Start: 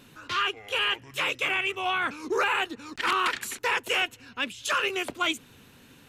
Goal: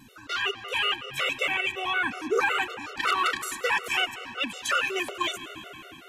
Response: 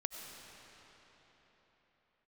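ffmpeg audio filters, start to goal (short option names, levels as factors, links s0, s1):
-filter_complex "[0:a]asplit=2[s0][s1];[1:a]atrim=start_sample=2205[s2];[s1][s2]afir=irnorm=-1:irlink=0,volume=0.631[s3];[s0][s3]amix=inputs=2:normalize=0,afftfilt=real='re*gt(sin(2*PI*5.4*pts/sr)*(1-2*mod(floor(b*sr/1024/380),2)),0)':imag='im*gt(sin(2*PI*5.4*pts/sr)*(1-2*mod(floor(b*sr/1024/380),2)),0)':win_size=1024:overlap=0.75"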